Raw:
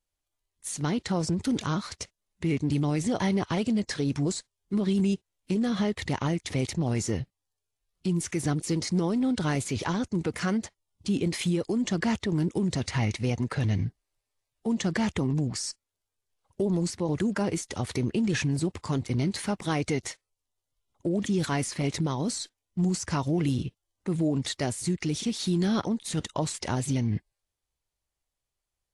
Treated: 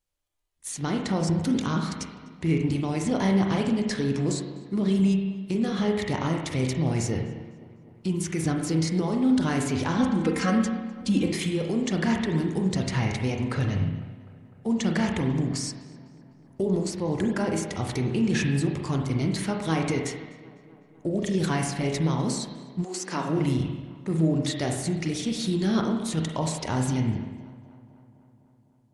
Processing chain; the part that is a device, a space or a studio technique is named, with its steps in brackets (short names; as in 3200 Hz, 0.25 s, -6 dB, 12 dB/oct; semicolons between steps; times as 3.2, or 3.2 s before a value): dub delay into a spring reverb (darkening echo 0.252 s, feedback 68%, low-pass 3300 Hz, level -20 dB; spring tank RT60 1.1 s, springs 31/43 ms, chirp 75 ms, DRR 2 dB); 9.98–11.32 comb 3.8 ms, depth 98%; 22.83–23.39 HPF 430 Hz -> 130 Hz 24 dB/oct